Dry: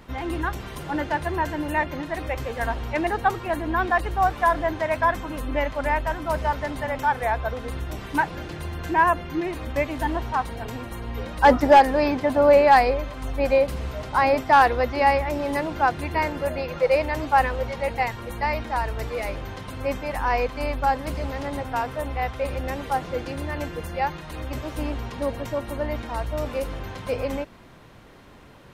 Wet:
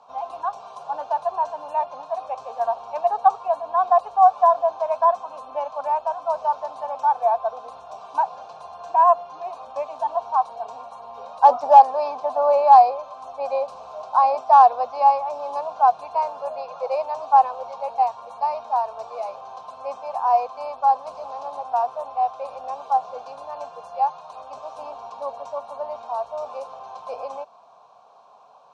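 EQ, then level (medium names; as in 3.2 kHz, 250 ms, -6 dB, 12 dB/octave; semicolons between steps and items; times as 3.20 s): cabinet simulation 300–8000 Hz, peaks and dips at 410 Hz +7 dB, 710 Hz +10 dB, 1.1 kHz +10 dB, 2.4 kHz +8 dB, 4.1 kHz +6 dB, 5.9 kHz +6 dB; peaking EQ 800 Hz +10 dB 1.4 oct; static phaser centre 820 Hz, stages 4; -11.5 dB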